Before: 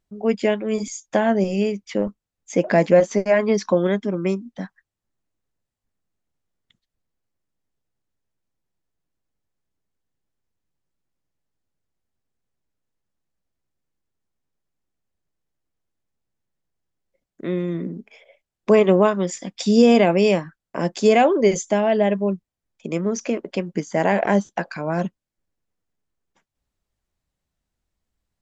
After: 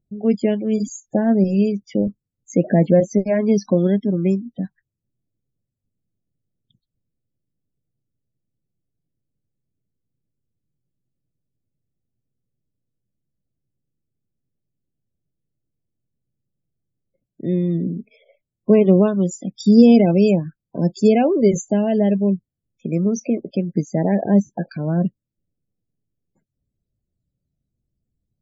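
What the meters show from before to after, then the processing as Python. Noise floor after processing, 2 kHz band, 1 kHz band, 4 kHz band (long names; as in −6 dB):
−83 dBFS, −9.0 dB, −6.0 dB, −6.0 dB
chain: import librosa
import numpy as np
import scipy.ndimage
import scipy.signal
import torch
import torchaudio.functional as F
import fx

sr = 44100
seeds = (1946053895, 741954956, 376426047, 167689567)

y = fx.graphic_eq(x, sr, hz=(125, 250, 1000, 2000), db=(11, 3, -9, -6))
y = fx.spec_topn(y, sr, count=32)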